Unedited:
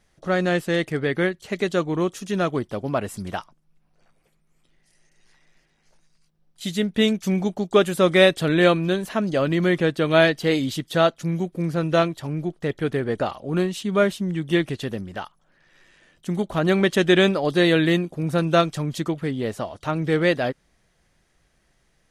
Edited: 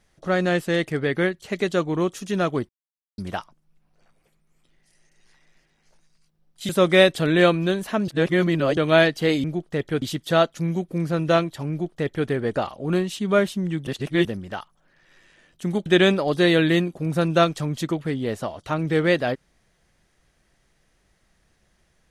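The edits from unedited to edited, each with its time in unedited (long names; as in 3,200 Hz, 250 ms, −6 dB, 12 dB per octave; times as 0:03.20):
0:02.69–0:03.18: silence
0:06.69–0:07.91: remove
0:09.30–0:09.99: reverse
0:12.34–0:12.92: duplicate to 0:10.66
0:14.51–0:14.89: reverse
0:16.50–0:17.03: remove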